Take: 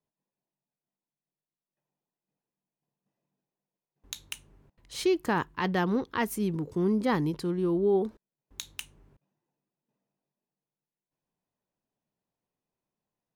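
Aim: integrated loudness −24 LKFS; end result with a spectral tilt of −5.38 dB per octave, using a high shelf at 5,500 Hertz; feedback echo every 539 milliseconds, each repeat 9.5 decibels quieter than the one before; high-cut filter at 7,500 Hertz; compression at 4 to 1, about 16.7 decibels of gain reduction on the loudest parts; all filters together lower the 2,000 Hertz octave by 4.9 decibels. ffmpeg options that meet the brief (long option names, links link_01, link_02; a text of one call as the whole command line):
ffmpeg -i in.wav -af "lowpass=7500,equalizer=frequency=2000:width_type=o:gain=-5,highshelf=frequency=5500:gain=-9,acompressor=threshold=-42dB:ratio=4,aecho=1:1:539|1078|1617|2156:0.335|0.111|0.0365|0.012,volume=19.5dB" out.wav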